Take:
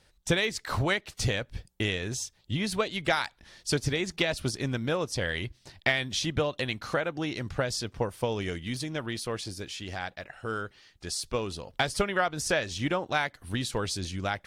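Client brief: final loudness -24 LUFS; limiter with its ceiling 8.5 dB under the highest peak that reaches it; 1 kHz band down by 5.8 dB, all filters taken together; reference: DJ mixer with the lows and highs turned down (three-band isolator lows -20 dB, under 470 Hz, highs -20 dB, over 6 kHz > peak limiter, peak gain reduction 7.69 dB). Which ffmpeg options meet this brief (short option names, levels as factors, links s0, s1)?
-filter_complex "[0:a]equalizer=f=1000:t=o:g=-7.5,alimiter=limit=0.1:level=0:latency=1,acrossover=split=470 6000:gain=0.1 1 0.1[s0][s1][s2];[s0][s1][s2]amix=inputs=3:normalize=0,volume=5.62,alimiter=limit=0.266:level=0:latency=1"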